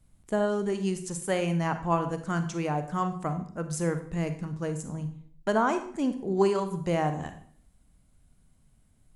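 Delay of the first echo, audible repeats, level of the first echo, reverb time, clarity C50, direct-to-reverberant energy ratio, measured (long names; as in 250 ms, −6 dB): no echo audible, no echo audible, no echo audible, 0.55 s, 10.5 dB, 8.5 dB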